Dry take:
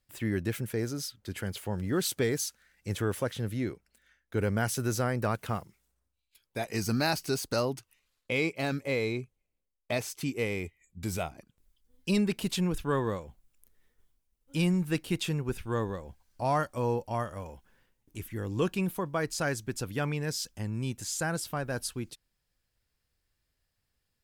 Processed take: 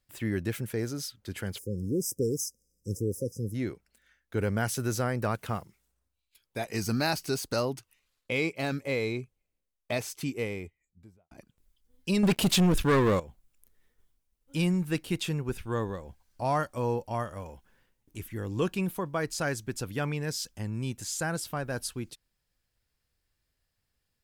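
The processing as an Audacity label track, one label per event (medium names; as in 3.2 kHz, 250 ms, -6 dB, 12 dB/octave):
1.590000	3.550000	spectral selection erased 540–4900 Hz
10.180000	11.310000	studio fade out
12.230000	13.200000	waveshaping leveller passes 3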